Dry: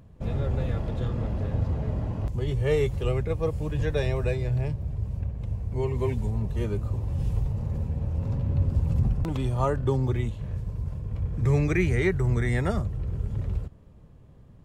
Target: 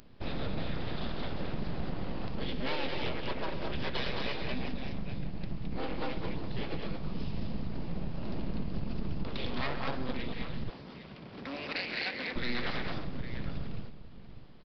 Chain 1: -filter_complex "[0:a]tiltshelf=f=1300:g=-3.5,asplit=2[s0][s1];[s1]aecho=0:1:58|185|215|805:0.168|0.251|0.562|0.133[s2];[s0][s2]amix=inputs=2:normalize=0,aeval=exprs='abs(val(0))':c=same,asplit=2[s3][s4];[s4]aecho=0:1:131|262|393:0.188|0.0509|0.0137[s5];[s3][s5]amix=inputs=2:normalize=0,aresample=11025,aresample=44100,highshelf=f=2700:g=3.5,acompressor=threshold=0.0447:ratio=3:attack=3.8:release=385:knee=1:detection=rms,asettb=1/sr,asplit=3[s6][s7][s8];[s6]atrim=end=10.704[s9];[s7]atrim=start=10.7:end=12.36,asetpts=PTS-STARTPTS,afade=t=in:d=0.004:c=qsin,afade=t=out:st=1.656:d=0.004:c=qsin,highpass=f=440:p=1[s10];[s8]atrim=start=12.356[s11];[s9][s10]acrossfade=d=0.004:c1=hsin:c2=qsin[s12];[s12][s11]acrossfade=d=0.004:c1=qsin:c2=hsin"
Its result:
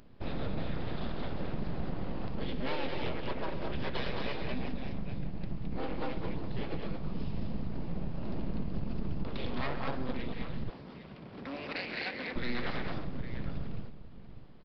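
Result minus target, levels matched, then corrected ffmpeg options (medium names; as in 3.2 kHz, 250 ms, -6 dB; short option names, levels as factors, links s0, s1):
4 kHz band -3.5 dB
-filter_complex "[0:a]tiltshelf=f=1300:g=-3.5,asplit=2[s0][s1];[s1]aecho=0:1:58|185|215|805:0.168|0.251|0.562|0.133[s2];[s0][s2]amix=inputs=2:normalize=0,aeval=exprs='abs(val(0))':c=same,asplit=2[s3][s4];[s4]aecho=0:1:131|262|393:0.188|0.0509|0.0137[s5];[s3][s5]amix=inputs=2:normalize=0,aresample=11025,aresample=44100,highshelf=f=2700:g=11.5,acompressor=threshold=0.0447:ratio=3:attack=3.8:release=385:knee=1:detection=rms,asettb=1/sr,asplit=3[s6][s7][s8];[s6]atrim=end=10.704[s9];[s7]atrim=start=10.7:end=12.36,asetpts=PTS-STARTPTS,afade=t=in:d=0.004:c=qsin,afade=t=out:st=1.656:d=0.004:c=qsin,highpass=f=440:p=1[s10];[s8]atrim=start=12.356[s11];[s9][s10]acrossfade=d=0.004:c1=hsin:c2=qsin[s12];[s12][s11]acrossfade=d=0.004:c1=qsin:c2=hsin"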